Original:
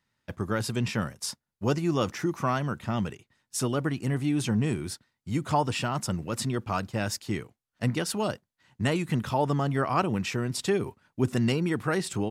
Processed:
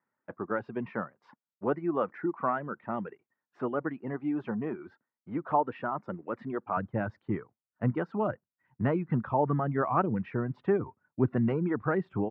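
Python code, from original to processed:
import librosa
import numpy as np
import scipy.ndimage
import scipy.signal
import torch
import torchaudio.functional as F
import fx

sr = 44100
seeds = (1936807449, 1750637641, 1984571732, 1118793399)

y = fx.highpass(x, sr, hz=fx.steps((0.0, 280.0), (6.77, 95.0)), slope=12)
y = fx.dereverb_blind(y, sr, rt60_s=0.71)
y = scipy.signal.sosfilt(scipy.signal.butter(4, 1600.0, 'lowpass', fs=sr, output='sos'), y)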